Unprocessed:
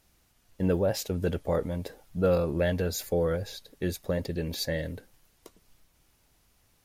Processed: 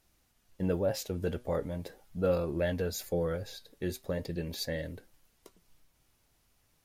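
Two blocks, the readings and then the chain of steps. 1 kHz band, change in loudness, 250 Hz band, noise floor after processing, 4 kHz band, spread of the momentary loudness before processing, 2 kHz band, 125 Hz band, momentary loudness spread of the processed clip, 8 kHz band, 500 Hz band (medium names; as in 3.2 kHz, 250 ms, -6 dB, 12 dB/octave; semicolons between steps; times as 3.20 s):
-4.5 dB, -4.5 dB, -4.5 dB, -71 dBFS, -4.5 dB, 10 LU, -4.5 dB, -5.0 dB, 10 LU, -4.5 dB, -4.0 dB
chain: flange 0.4 Hz, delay 2.6 ms, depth 6.4 ms, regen +77%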